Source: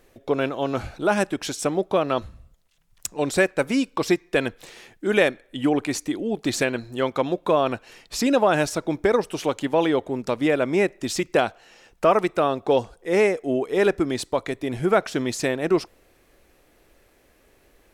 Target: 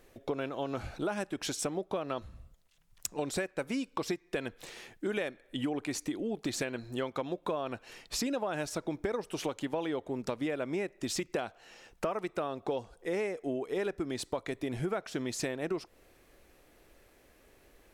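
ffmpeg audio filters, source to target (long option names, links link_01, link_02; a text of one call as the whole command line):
ffmpeg -i in.wav -af "acompressor=threshold=-28dB:ratio=6,volume=-3dB" out.wav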